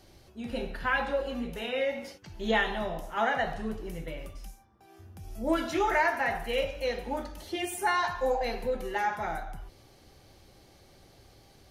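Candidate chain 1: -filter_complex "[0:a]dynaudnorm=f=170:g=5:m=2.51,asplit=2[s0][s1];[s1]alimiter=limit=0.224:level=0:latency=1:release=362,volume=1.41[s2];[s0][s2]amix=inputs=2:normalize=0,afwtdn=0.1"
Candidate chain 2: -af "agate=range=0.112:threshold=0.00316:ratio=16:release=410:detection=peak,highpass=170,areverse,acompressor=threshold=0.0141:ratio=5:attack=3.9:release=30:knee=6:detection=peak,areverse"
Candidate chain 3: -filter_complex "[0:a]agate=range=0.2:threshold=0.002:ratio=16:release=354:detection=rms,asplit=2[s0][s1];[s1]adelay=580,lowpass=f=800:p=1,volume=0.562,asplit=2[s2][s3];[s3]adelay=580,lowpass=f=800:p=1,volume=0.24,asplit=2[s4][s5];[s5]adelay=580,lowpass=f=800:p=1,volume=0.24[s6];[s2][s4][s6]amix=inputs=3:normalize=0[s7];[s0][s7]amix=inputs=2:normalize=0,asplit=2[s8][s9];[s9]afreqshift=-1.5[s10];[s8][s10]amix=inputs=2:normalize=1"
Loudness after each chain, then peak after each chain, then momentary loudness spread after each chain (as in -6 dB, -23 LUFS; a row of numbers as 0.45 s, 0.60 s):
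-17.0 LUFS, -39.0 LUFS, -33.0 LUFS; -1.5 dBFS, -26.0 dBFS, -17.0 dBFS; 13 LU, 10 LU, 18 LU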